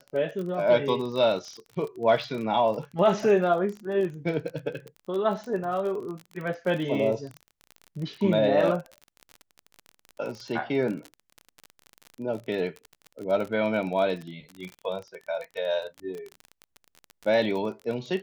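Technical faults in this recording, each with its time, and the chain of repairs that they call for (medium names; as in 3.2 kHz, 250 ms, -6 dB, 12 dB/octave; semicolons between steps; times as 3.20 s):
crackle 31 per s -32 dBFS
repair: de-click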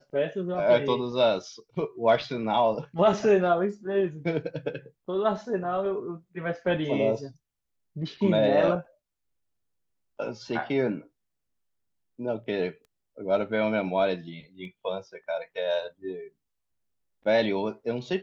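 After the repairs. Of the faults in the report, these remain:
nothing left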